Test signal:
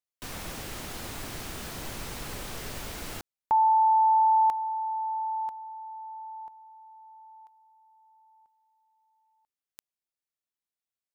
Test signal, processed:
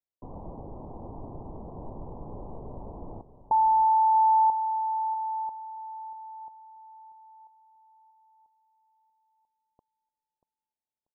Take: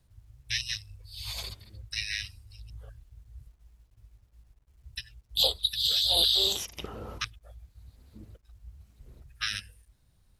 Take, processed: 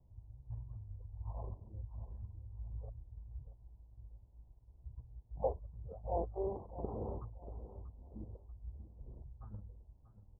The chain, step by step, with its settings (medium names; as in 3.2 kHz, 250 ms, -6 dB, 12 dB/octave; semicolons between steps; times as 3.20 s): steep low-pass 1 kHz 72 dB/octave; on a send: feedback delay 637 ms, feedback 27%, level -13.5 dB